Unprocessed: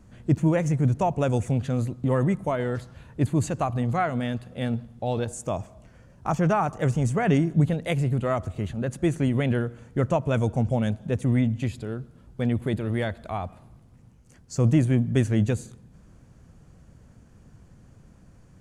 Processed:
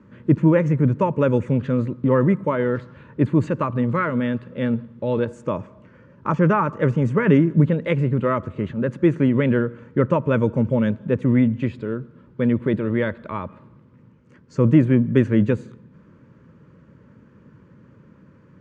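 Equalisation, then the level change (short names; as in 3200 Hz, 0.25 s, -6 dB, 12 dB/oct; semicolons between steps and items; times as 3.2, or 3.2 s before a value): BPF 160–2000 Hz; Butterworth band-stop 730 Hz, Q 2.6; +7.5 dB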